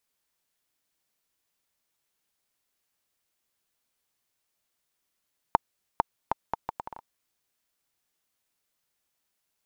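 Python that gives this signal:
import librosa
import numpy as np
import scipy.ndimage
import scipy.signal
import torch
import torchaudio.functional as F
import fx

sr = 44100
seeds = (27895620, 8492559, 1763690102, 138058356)

y = fx.bouncing_ball(sr, first_gap_s=0.45, ratio=0.7, hz=910.0, decay_ms=18.0, level_db=-4.5)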